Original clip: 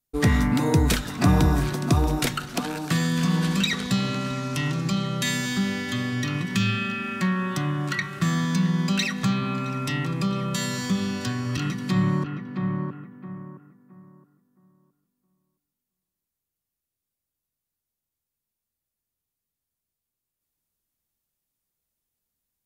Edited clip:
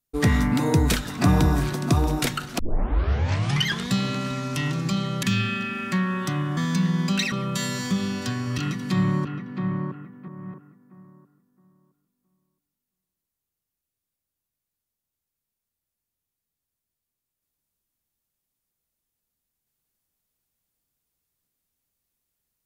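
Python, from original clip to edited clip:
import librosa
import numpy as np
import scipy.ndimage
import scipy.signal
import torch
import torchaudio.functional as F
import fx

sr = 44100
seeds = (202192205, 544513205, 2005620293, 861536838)

y = fx.edit(x, sr, fx.tape_start(start_s=2.59, length_s=1.3),
    fx.cut(start_s=5.23, length_s=1.29),
    fx.cut(start_s=7.86, length_s=0.51),
    fx.cut(start_s=9.12, length_s=1.19),
    fx.reverse_span(start_s=13.27, length_s=0.26), tone=tone)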